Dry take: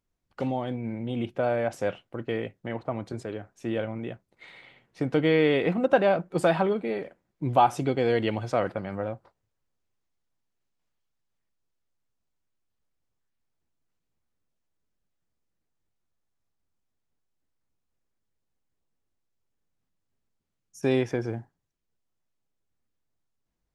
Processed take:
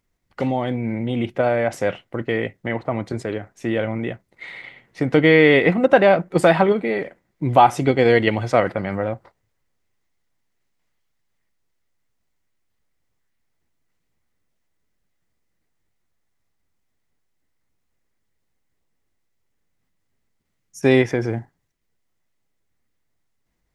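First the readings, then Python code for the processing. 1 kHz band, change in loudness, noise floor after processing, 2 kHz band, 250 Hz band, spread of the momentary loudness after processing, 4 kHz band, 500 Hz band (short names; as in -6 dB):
+7.5 dB, +8.0 dB, -72 dBFS, +11.5 dB, +8.0 dB, 15 LU, +8.0 dB, +8.0 dB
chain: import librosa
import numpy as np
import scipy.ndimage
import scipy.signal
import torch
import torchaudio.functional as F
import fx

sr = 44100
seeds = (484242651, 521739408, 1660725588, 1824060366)

p1 = fx.peak_eq(x, sr, hz=2000.0, db=8.5, octaves=0.25)
p2 = fx.level_steps(p1, sr, step_db=12)
p3 = p1 + (p2 * librosa.db_to_amplitude(-2.0))
y = p3 * librosa.db_to_amplitude(4.5)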